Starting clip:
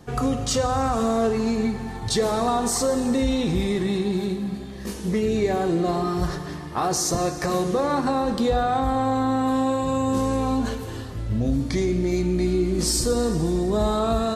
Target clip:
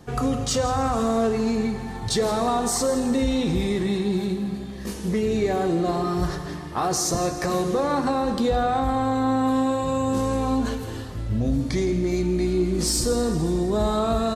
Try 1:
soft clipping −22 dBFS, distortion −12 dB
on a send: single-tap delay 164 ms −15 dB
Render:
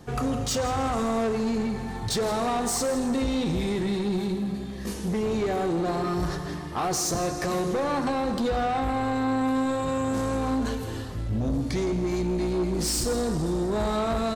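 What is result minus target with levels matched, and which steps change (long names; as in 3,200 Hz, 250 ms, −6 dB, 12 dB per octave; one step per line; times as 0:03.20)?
soft clipping: distortion +17 dB
change: soft clipping −10.5 dBFS, distortion −29 dB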